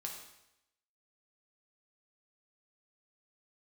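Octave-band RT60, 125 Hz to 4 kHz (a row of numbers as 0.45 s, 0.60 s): 0.80 s, 0.85 s, 0.85 s, 0.85 s, 0.85 s, 0.85 s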